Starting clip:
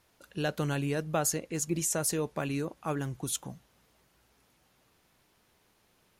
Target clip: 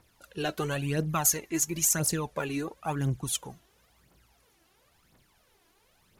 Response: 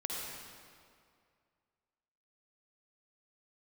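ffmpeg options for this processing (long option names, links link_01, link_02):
-filter_complex "[0:a]asettb=1/sr,asplit=3[link_01][link_02][link_03];[link_01]atrim=end=1.094[link_04];[link_02]atrim=start=1.09:end=2,asetpts=PTS-STARTPTS,afade=type=in:duration=0.004:curve=qsin,afade=type=out:start_time=0.906:duration=0.004:curve=qsin,equalizer=frequency=500:width_type=o:width=0.33:gain=-11,equalizer=frequency=1000:width_type=o:width=0.33:gain=5,equalizer=frequency=2000:width_type=o:width=0.33:gain=4,equalizer=frequency=6300:width_type=o:width=0.33:gain=6,equalizer=frequency=12500:width_type=o:width=0.33:gain=10[link_05];[link_03]atrim=start=1.996[link_06];[link_04][link_05]acrossfade=duration=0.004:curve1=hsin:curve2=qsin[link_07];[link_07][link_06]acrossfade=duration=0.004:curve1=qsin:curve2=hsin,aphaser=in_gain=1:out_gain=1:delay=3.1:decay=0.65:speed=0.97:type=triangular"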